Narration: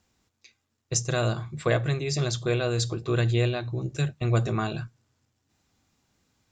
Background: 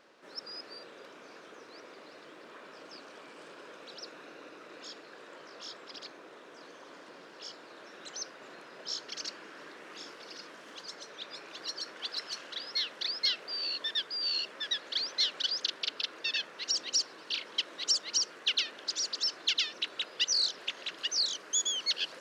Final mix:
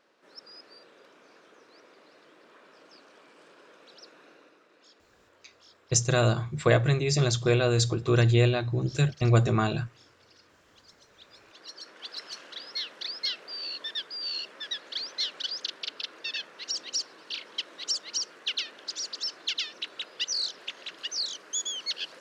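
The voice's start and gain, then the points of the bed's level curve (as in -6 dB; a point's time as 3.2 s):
5.00 s, +2.5 dB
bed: 4.32 s -5.5 dB
4.69 s -12.5 dB
10.98 s -12.5 dB
12.26 s -1.5 dB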